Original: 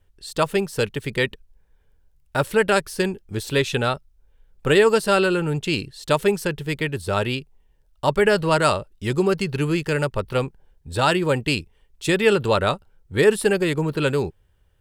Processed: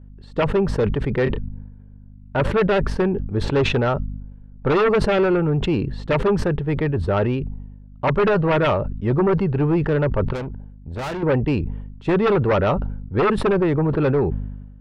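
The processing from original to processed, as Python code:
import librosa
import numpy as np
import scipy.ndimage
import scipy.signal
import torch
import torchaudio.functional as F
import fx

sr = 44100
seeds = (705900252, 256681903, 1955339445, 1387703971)

y = scipy.signal.sosfilt(scipy.signal.butter(2, 1200.0, 'lowpass', fs=sr, output='sos'), x)
y = fx.tube_stage(y, sr, drive_db=31.0, bias=0.55, at=(10.33, 11.23))
y = fx.add_hum(y, sr, base_hz=50, snr_db=26)
y = fx.fold_sine(y, sr, drive_db=10, ceiling_db=-5.0)
y = fx.doubler(y, sr, ms=29.0, db=-12, at=(1.23, 2.4))
y = fx.sustainer(y, sr, db_per_s=48.0)
y = F.gain(torch.from_numpy(y), -8.5).numpy()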